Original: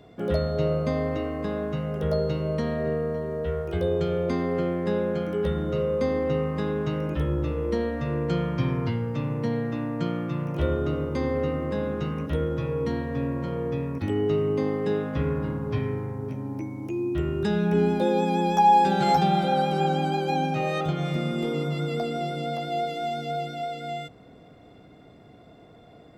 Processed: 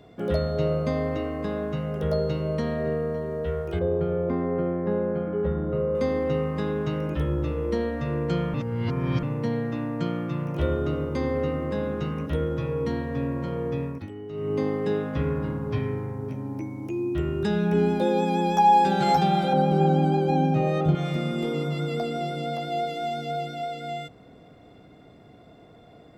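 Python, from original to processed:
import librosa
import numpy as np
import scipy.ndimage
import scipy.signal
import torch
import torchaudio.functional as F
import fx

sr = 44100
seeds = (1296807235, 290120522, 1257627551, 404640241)

y = fx.lowpass(x, sr, hz=1400.0, slope=12, at=(3.79, 5.95))
y = fx.tilt_shelf(y, sr, db=7.0, hz=780.0, at=(19.53, 20.95))
y = fx.edit(y, sr, fx.reverse_span(start_s=8.54, length_s=0.69),
    fx.fade_down_up(start_s=13.84, length_s=0.74, db=-13.5, fade_s=0.26), tone=tone)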